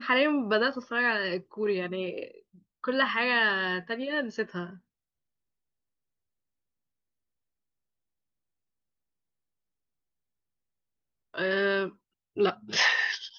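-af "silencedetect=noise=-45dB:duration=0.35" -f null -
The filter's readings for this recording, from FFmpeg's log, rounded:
silence_start: 2.39
silence_end: 2.84 | silence_duration: 0.45
silence_start: 4.77
silence_end: 11.34 | silence_duration: 6.57
silence_start: 11.91
silence_end: 12.37 | silence_duration: 0.46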